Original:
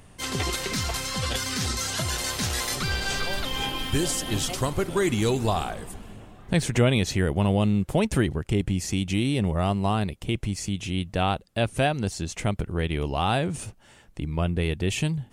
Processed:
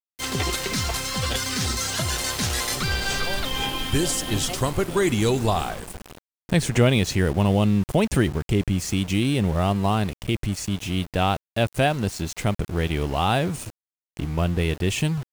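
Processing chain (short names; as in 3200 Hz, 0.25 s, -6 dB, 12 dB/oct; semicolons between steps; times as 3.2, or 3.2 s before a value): sample gate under -36 dBFS; gain +2.5 dB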